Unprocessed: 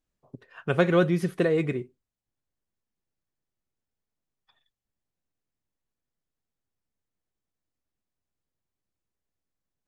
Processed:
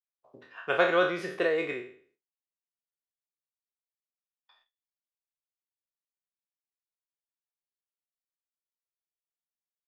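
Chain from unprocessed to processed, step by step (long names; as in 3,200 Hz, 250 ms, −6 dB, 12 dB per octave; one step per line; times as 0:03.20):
peak hold with a decay on every bin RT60 0.50 s
noise gate with hold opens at −55 dBFS
three-way crossover with the lows and the highs turned down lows −22 dB, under 420 Hz, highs −15 dB, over 5,900 Hz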